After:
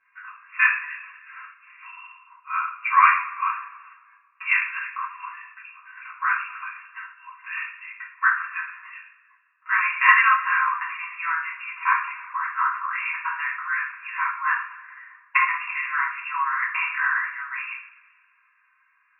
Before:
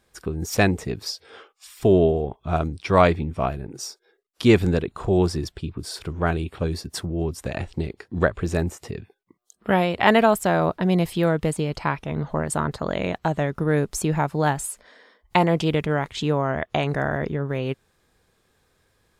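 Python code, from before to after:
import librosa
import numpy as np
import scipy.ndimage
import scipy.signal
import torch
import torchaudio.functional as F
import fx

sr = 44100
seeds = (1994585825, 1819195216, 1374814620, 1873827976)

y = fx.brickwall_bandpass(x, sr, low_hz=960.0, high_hz=2800.0)
y = fx.rev_double_slope(y, sr, seeds[0], early_s=0.49, late_s=1.8, knee_db=-18, drr_db=-9.5)
y = y * librosa.db_to_amplitude(-1.5)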